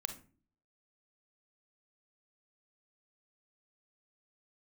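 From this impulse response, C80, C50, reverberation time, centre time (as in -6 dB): 17.0 dB, 10.0 dB, not exponential, 11 ms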